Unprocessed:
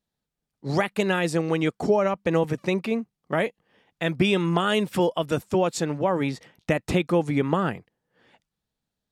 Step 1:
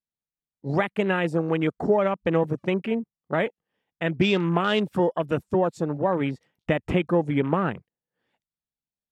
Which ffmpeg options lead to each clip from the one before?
ffmpeg -i in.wav -af "afwtdn=0.02" out.wav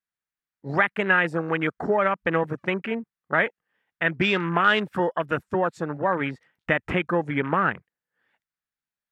ffmpeg -i in.wav -af "equalizer=frequency=1600:width_type=o:width=1.4:gain=14,volume=-4dB" out.wav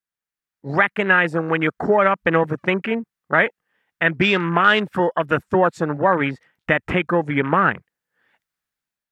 ffmpeg -i in.wav -af "dynaudnorm=framelen=200:gausssize=5:maxgain=8dB" out.wav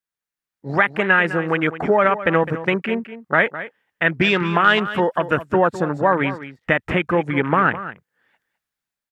ffmpeg -i in.wav -af "aecho=1:1:208:0.211" out.wav

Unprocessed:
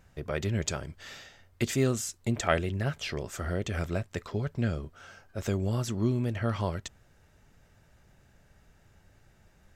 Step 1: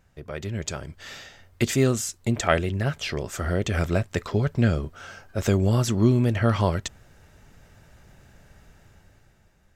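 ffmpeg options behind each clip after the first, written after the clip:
ffmpeg -i in.wav -af "dynaudnorm=framelen=180:gausssize=11:maxgain=11dB,volume=-2.5dB" out.wav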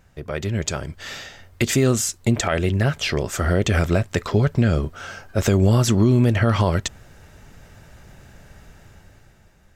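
ffmpeg -i in.wav -af "alimiter=limit=-15dB:level=0:latency=1:release=112,volume=6.5dB" out.wav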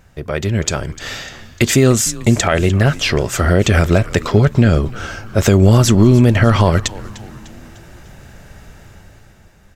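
ffmpeg -i in.wav -filter_complex "[0:a]asplit=5[link_01][link_02][link_03][link_04][link_05];[link_02]adelay=300,afreqshift=-110,volume=-18dB[link_06];[link_03]adelay=600,afreqshift=-220,volume=-23.8dB[link_07];[link_04]adelay=900,afreqshift=-330,volume=-29.7dB[link_08];[link_05]adelay=1200,afreqshift=-440,volume=-35.5dB[link_09];[link_01][link_06][link_07][link_08][link_09]amix=inputs=5:normalize=0,volume=6.5dB" out.wav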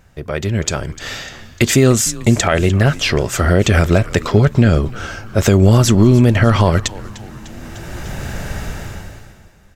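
ffmpeg -i in.wav -af "dynaudnorm=framelen=140:gausssize=13:maxgain=16dB,volume=-1dB" out.wav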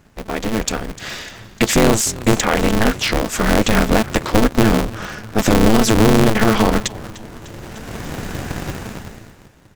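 ffmpeg -i in.wav -af "aeval=exprs='val(0)*sgn(sin(2*PI*110*n/s))':channel_layout=same,volume=-2dB" out.wav

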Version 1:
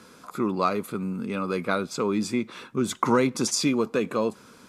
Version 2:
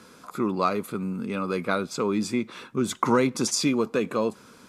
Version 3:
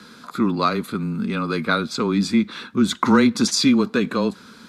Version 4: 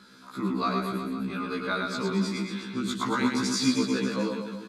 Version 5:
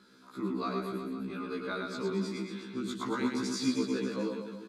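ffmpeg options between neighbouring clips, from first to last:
ffmpeg -i in.wav -af anull out.wav
ffmpeg -i in.wav -af "equalizer=frequency=250:width_type=o:width=0.67:gain=10,equalizer=frequency=1600:width_type=o:width=0.67:gain=9,equalizer=frequency=4000:width_type=o:width=0.67:gain=12,afreqshift=-18" out.wav
ffmpeg -i in.wav -filter_complex "[0:a]asplit=2[link_01][link_02];[link_02]aecho=0:1:110|231|364.1|510.5|671.6:0.631|0.398|0.251|0.158|0.1[link_03];[link_01][link_03]amix=inputs=2:normalize=0,afftfilt=real='re*1.73*eq(mod(b,3),0)':imag='im*1.73*eq(mod(b,3),0)':win_size=2048:overlap=0.75,volume=-7dB" out.wav
ffmpeg -i in.wav -af "equalizer=frequency=370:width_type=o:width=0.94:gain=7,volume=-8.5dB" out.wav

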